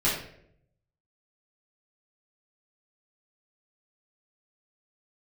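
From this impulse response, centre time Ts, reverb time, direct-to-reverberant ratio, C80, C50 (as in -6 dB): 42 ms, 0.70 s, -9.0 dB, 7.5 dB, 3.5 dB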